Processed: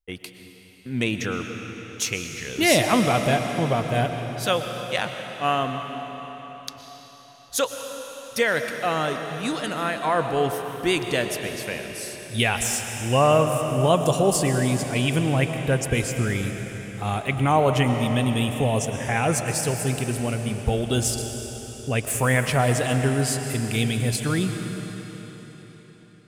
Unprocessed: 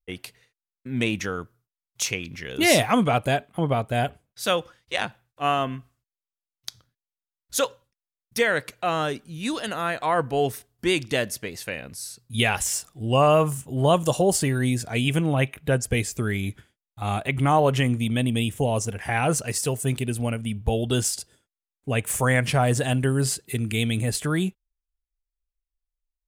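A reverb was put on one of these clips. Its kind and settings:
comb and all-pass reverb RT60 4.5 s, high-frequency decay 0.95×, pre-delay 80 ms, DRR 5.5 dB

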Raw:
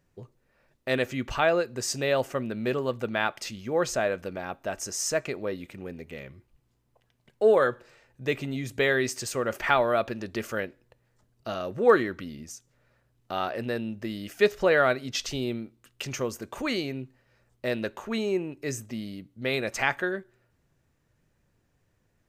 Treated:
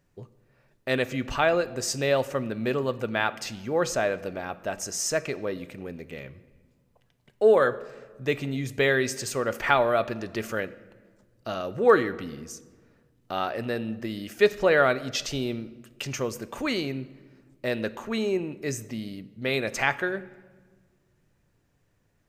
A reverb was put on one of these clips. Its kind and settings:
rectangular room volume 1,400 cubic metres, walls mixed, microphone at 0.31 metres
level +1 dB

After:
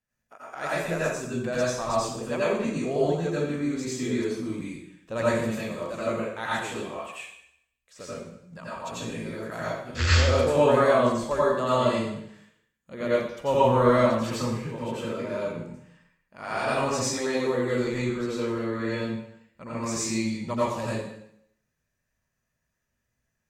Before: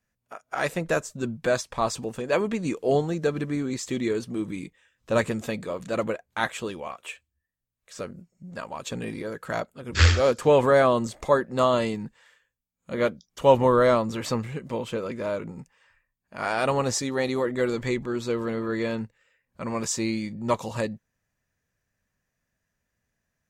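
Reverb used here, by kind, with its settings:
dense smooth reverb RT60 0.71 s, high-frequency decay 1×, pre-delay 75 ms, DRR −8.5 dB
level −9.5 dB

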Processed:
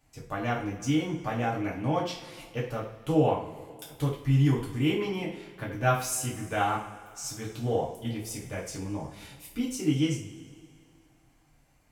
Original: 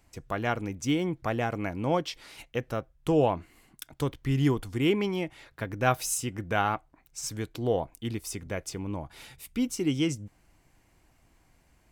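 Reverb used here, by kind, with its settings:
coupled-rooms reverb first 0.38 s, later 2.2 s, from −18 dB, DRR −5.5 dB
level −7.5 dB

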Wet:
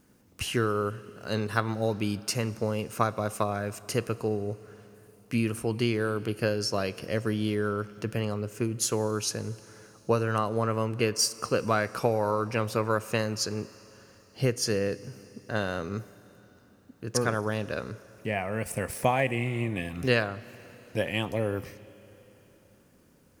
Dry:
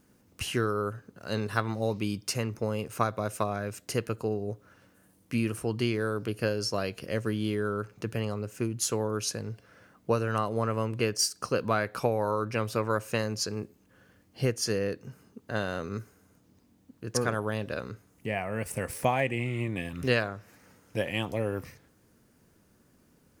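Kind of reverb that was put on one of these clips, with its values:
four-comb reverb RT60 3.9 s, combs from 30 ms, DRR 18 dB
level +1.5 dB

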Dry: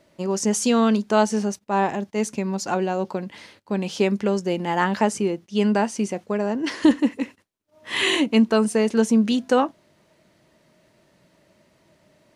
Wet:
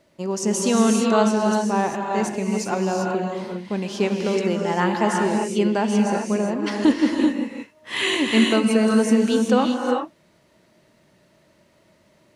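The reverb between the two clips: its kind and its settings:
reverb whose tail is shaped and stops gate 420 ms rising, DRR 0.5 dB
level −1.5 dB

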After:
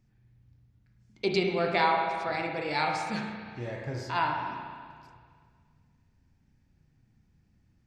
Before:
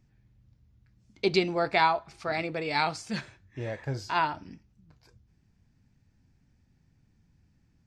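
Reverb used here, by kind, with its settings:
spring reverb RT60 1.9 s, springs 33/47 ms, chirp 35 ms, DRR 1 dB
level −3 dB

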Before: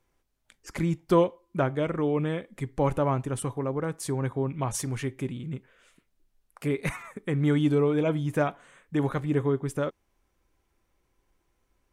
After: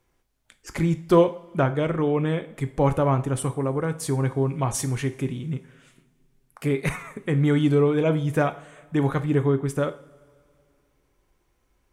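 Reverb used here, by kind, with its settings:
coupled-rooms reverb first 0.44 s, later 2.5 s, from −20 dB, DRR 10 dB
level +3.5 dB

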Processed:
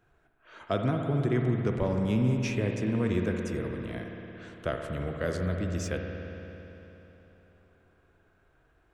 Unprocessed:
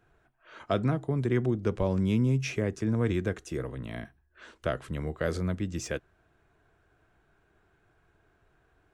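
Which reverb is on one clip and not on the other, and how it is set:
spring reverb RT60 3.5 s, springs 56 ms, chirp 35 ms, DRR 2.5 dB
level −1.5 dB

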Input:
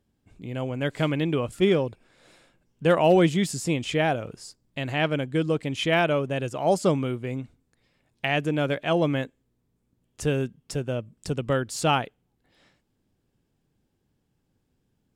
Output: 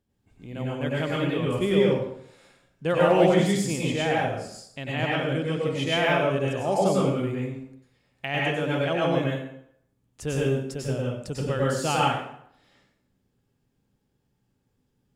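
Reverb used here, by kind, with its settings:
dense smooth reverb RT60 0.68 s, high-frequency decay 0.8×, pre-delay 85 ms, DRR −5 dB
level −5.5 dB

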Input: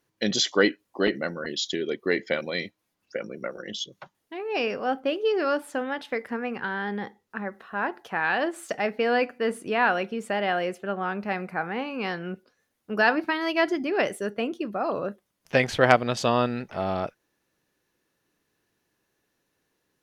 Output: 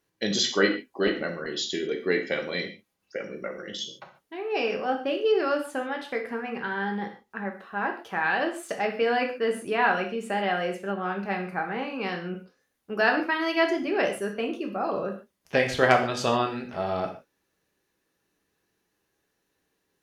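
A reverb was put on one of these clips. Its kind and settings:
reverb whose tail is shaped and stops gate 170 ms falling, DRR 2.5 dB
level −2.5 dB

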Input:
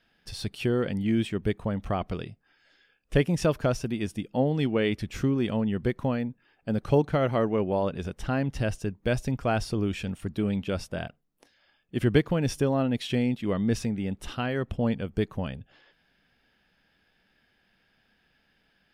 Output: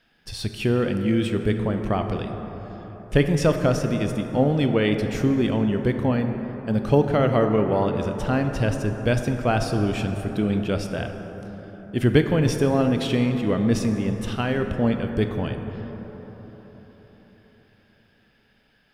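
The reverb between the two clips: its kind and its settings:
dense smooth reverb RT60 4.7 s, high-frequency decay 0.35×, DRR 5.5 dB
level +4 dB

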